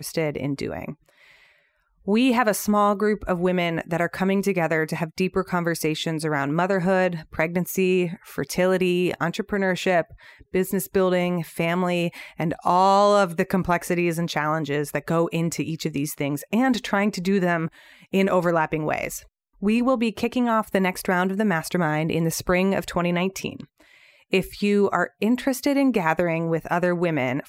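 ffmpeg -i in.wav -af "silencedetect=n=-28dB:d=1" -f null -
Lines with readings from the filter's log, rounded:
silence_start: 0.91
silence_end: 2.08 | silence_duration: 1.17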